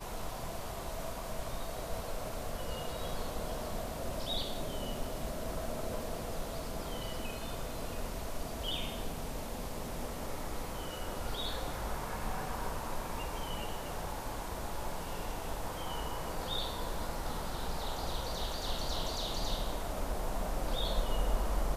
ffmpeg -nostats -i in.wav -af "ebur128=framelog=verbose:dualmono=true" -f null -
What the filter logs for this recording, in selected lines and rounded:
Integrated loudness:
  I:         -35.9 LUFS
  Threshold: -45.9 LUFS
Loudness range:
  LRA:         3.0 LU
  Threshold: -56.1 LUFS
  LRA low:   -37.2 LUFS
  LRA high:  -34.2 LUFS